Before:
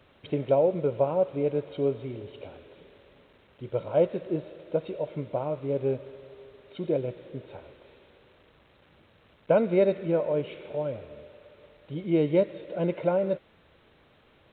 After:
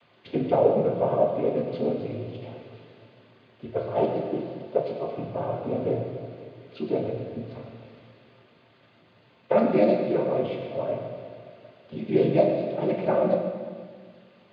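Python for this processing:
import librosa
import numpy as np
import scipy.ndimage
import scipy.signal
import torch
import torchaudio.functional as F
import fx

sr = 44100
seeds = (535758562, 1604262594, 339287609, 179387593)

y = fx.noise_vocoder(x, sr, seeds[0], bands=16)
y = fx.rev_fdn(y, sr, rt60_s=1.7, lf_ratio=1.3, hf_ratio=1.0, size_ms=78.0, drr_db=0.5)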